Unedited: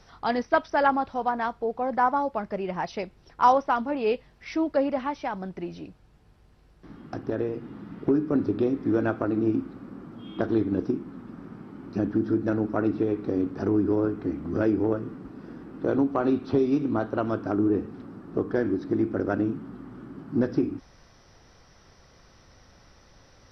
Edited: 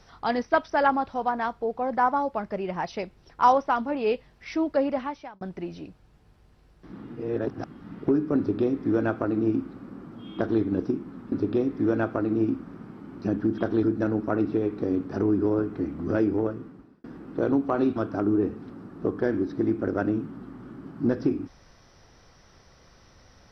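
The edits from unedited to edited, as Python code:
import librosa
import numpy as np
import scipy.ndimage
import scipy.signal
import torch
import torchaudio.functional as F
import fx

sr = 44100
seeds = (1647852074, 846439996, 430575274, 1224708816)

y = fx.edit(x, sr, fx.fade_out_span(start_s=4.97, length_s=0.44),
    fx.reverse_span(start_s=6.93, length_s=0.91),
    fx.duplicate(start_s=8.38, length_s=1.29, to_s=11.32),
    fx.duplicate(start_s=10.36, length_s=0.25, to_s=12.29),
    fx.fade_out_span(start_s=14.6, length_s=0.9, curve='qsin'),
    fx.cut(start_s=16.42, length_s=0.86), tone=tone)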